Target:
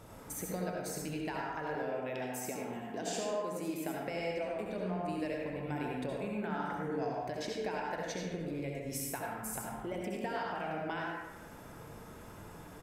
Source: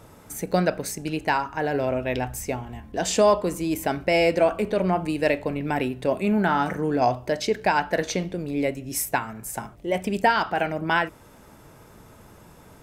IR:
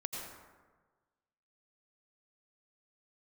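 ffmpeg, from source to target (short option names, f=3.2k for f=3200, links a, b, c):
-filter_complex "[0:a]asettb=1/sr,asplit=3[a][b][c];[a]atrim=end=1.754[d];[b]atrim=start=1.75:end=4.09,asetpts=PTS-STARTPTS,afade=t=in:d=0.004:c=qsin,afade=t=out:st=2.336:d=0.004:c=qsin,highpass=f=150:w=0.5412,highpass=f=150:w=1.3066[e];[c]atrim=start=4.086[f];[d][e]acrossfade=d=0.004:c1=hsin:c2=qsin[g];[g][f]acrossfade=d=0.004:c1=qsin:c2=hsin,acompressor=threshold=-34dB:ratio=6,asplit=2[h][i];[i]adelay=100,highpass=300,lowpass=3.4k,asoftclip=type=hard:threshold=-29.5dB,volume=-7dB[j];[h][j]amix=inputs=2:normalize=0[k];[1:a]atrim=start_sample=2205,asetrate=57330,aresample=44100[l];[k][l]afir=irnorm=-1:irlink=0"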